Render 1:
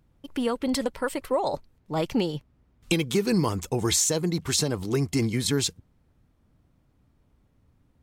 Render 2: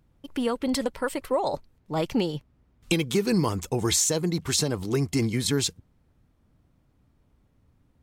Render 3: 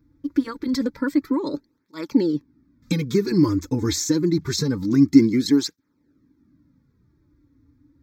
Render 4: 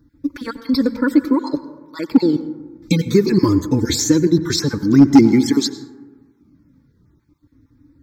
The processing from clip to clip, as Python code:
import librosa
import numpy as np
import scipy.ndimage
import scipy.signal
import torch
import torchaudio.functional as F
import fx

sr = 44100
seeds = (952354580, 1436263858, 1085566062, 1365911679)

y1 = x
y2 = fx.fixed_phaser(y1, sr, hz=2900.0, stages=6)
y2 = fx.small_body(y2, sr, hz=(290.0, 850.0), ring_ms=50, db=16)
y2 = fx.flanger_cancel(y2, sr, hz=0.26, depth_ms=5.5)
y2 = y2 * librosa.db_to_amplitude(3.5)
y3 = fx.spec_dropout(y2, sr, seeds[0], share_pct=21)
y3 = np.clip(y3, -10.0 ** (-9.0 / 20.0), 10.0 ** (-9.0 / 20.0))
y3 = fx.rev_plate(y3, sr, seeds[1], rt60_s=1.3, hf_ratio=0.3, predelay_ms=80, drr_db=13.0)
y3 = y3 * librosa.db_to_amplitude(6.5)